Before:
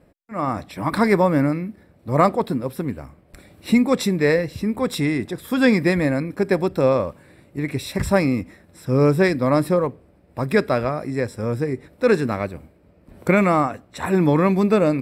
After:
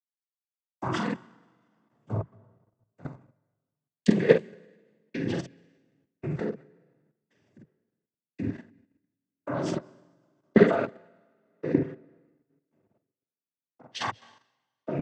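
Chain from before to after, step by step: knee-point frequency compression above 1.7 kHz 1.5:1; peaking EQ 5.1 kHz -4 dB 1.2 oct; hum notches 60/120/180/240/300/360/420/480/540 Hz; in parallel at -1 dB: compression 5:1, threshold -32 dBFS, peak gain reduction 18.5 dB; on the sum: tape echo 67 ms, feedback 42%, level -9.5 dB, low-pass 1.5 kHz; peak limiter -15 dBFS, peak gain reduction 12 dB; trance gate "......xx" 111 bpm -60 dB; noise-vocoded speech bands 16; doubling 47 ms -4.5 dB; on a send at -17 dB: reverberation RT60 4.0 s, pre-delay 169 ms; on the sum: level held to a coarse grid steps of 10 dB; three bands expanded up and down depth 100%; trim -1 dB

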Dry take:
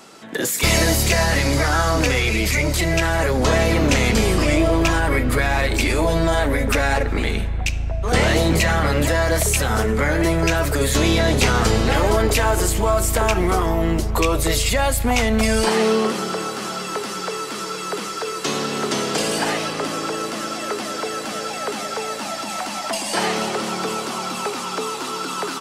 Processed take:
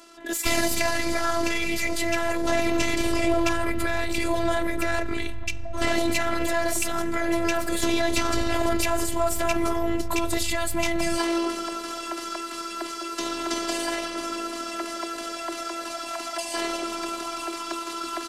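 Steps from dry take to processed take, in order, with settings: tempo 1.4×; Chebyshev shaper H 2 -16 dB, 8 -39 dB, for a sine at -3.5 dBFS; robot voice 337 Hz; trim -3.5 dB

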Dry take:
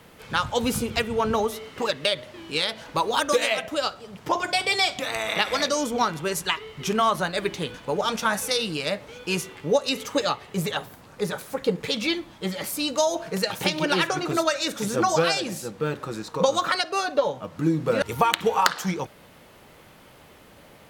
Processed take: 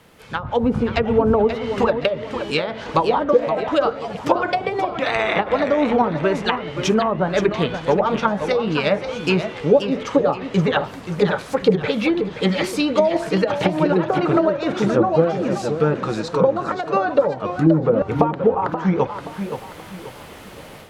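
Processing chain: low-pass that closes with the level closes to 580 Hz, closed at -19 dBFS; level rider gain up to 11.5 dB; modulated delay 528 ms, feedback 36%, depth 151 cents, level -9 dB; trim -1 dB

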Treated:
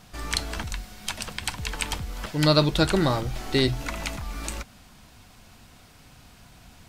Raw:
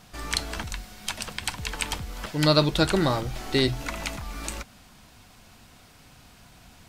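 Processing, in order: bass shelf 150 Hz +3 dB

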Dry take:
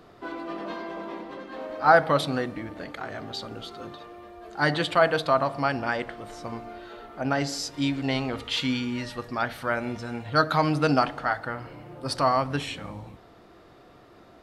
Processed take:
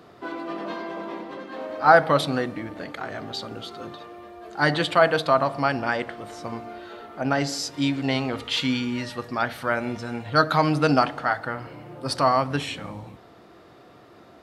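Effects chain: high-pass 82 Hz; trim +2.5 dB

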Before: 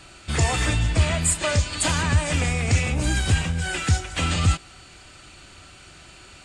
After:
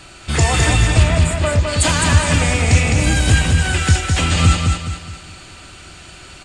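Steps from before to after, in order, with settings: 1.02–1.67 s: low-pass 2.2 kHz -> 1.2 kHz 6 dB/octave; feedback delay 209 ms, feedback 40%, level -4 dB; trim +6 dB

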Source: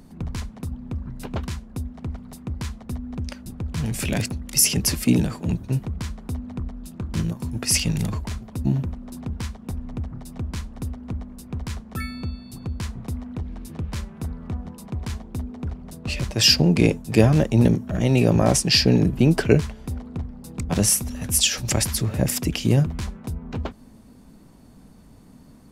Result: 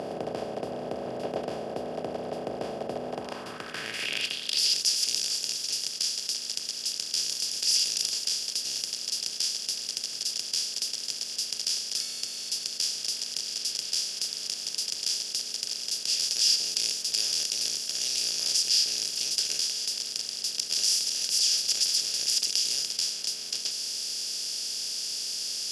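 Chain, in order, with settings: spectral levelling over time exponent 0.2; band-pass sweep 680 Hz -> 5.6 kHz, 3.05–4.84 s; trim -9 dB

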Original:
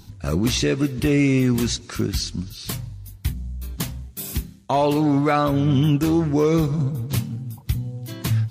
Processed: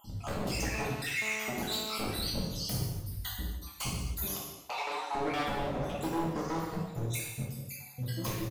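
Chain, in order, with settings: random holes in the spectrogram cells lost 68%; peak limiter -15 dBFS, peak gain reduction 6 dB; compression 2.5:1, threshold -30 dBFS, peak gain reduction 8 dB; wavefolder -29.5 dBFS; 4.33–5.04 s: band-pass 560–7700 Hz; feedback delay 148 ms, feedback 48%, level -17.5 dB; gated-style reverb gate 320 ms falling, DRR -4.5 dB; 0.74–1.98 s: mobile phone buzz -40 dBFS; trim -2.5 dB

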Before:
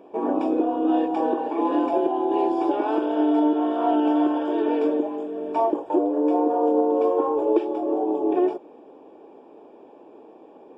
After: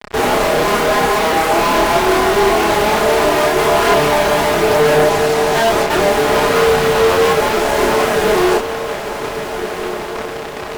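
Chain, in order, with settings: comb filter that takes the minimum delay 4.8 ms; tone controls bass -9 dB, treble -14 dB; in parallel at -2 dB: compression, threshold -34 dBFS, peak gain reduction 14.5 dB; on the sum: fuzz box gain 46 dB, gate -39 dBFS; chorus voices 2, 0.51 Hz, delay 30 ms, depth 3.5 ms; on a send: echo that smears into a reverb 1489 ms, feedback 54%, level -10 dB; on the sum: trim +3.5 dB

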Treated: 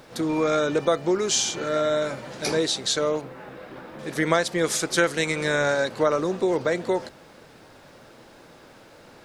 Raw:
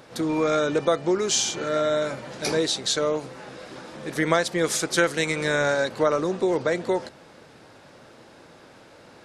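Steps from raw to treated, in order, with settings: 3.21–3.99 s: low-pass 2.5 kHz 12 dB/octave; added noise pink -63 dBFS

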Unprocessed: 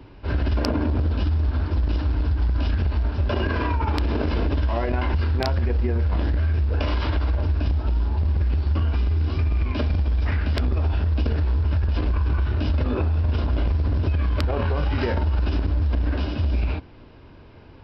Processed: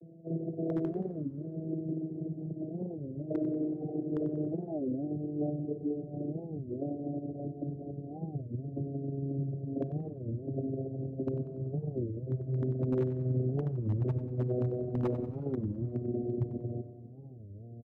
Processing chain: vocoder on a note that slides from E3, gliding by -6 st; Chebyshev low-pass 720 Hz, order 8; dynamic bell 370 Hz, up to +8 dB, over -49 dBFS, Q 3.2; in parallel at -1 dB: compression 8:1, threshold -35 dBFS, peak gain reduction 16.5 dB; on the sum: wavefolder -16 dBFS; on a send: feedback delay 94 ms, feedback 48%, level -13 dB; on the sum: Schroeder reverb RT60 2.9 s, combs from 32 ms, DRR 16.5 dB; warped record 33 1/3 rpm, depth 250 cents; trim -7 dB

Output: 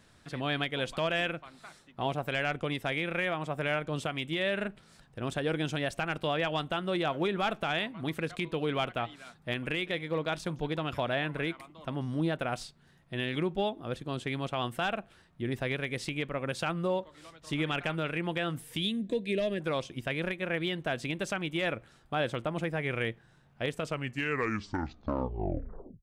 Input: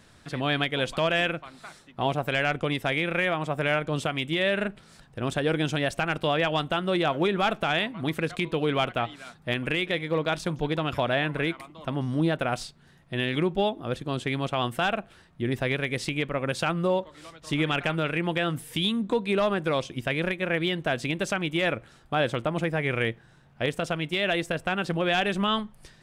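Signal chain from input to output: tape stop on the ending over 2.33 s; time-frequency box 18.83–19.60 s, 690–1600 Hz -17 dB; trim -5.5 dB

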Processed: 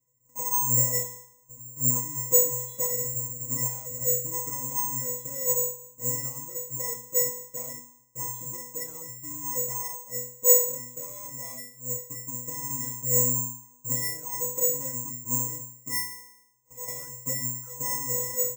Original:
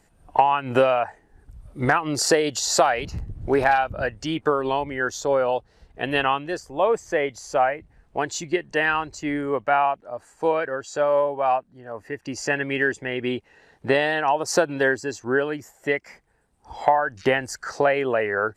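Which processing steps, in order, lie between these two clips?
square wave that keeps the level; comb 6.1 ms, depth 52%; in parallel at -7.5 dB: fuzz box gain 40 dB, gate -35 dBFS; on the sum: vibrato 2.8 Hz 29 cents; pitch-class resonator B, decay 0.58 s; spring tank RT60 1 s, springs 32/44 ms, chirp 30 ms, DRR 18.5 dB; careless resampling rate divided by 6×, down filtered, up zero stuff; trim -5 dB

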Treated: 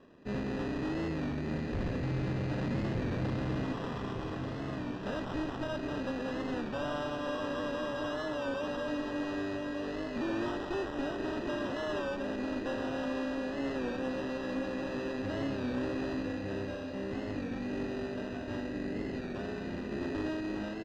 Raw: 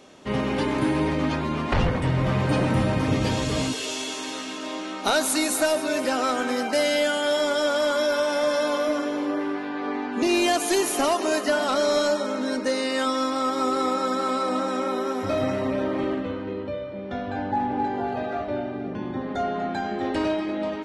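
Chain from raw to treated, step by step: tracing distortion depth 0.082 ms; high-order bell 1.2 kHz -14.5 dB; static phaser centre 2.8 kHz, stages 4; valve stage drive 30 dB, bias 0.7; sample-and-hold 20×; distance through air 180 m; on a send: feedback delay 1194 ms, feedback 56%, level -7 dB; on the sum: warped record 33 1/3 rpm, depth 100 cents; trim -1 dB

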